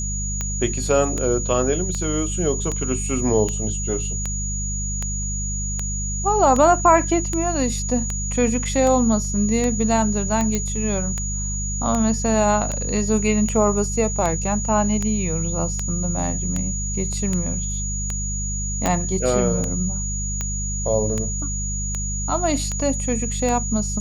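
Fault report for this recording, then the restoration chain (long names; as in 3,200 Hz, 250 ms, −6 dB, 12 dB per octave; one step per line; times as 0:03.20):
mains hum 50 Hz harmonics 4 −27 dBFS
scratch tick 78 rpm −11 dBFS
whistle 6,800 Hz −27 dBFS
0:10.55: click −8 dBFS
0:18.86: click −6 dBFS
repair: click removal
hum removal 50 Hz, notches 4
notch filter 6,800 Hz, Q 30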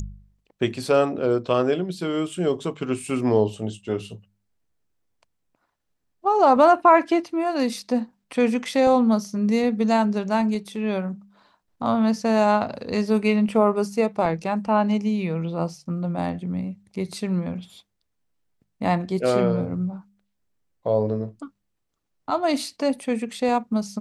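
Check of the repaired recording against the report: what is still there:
0:18.86: click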